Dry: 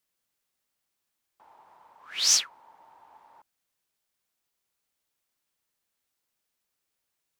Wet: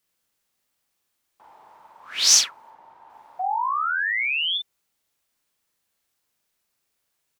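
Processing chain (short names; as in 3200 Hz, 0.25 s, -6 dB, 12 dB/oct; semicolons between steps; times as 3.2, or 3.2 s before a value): 2.7–3.1 high shelf 5500 Hz -10.5 dB; 3.39–4.58 painted sound rise 720–3600 Hz -30 dBFS; doubler 41 ms -3 dB; gain +4 dB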